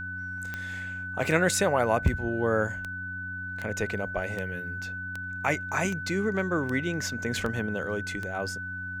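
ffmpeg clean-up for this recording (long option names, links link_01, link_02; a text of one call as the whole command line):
ffmpeg -i in.wav -af "adeclick=threshold=4,bandreject=frequency=92.6:width_type=h:width=4,bandreject=frequency=185.2:width_type=h:width=4,bandreject=frequency=277.8:width_type=h:width=4,bandreject=frequency=1500:width=30" out.wav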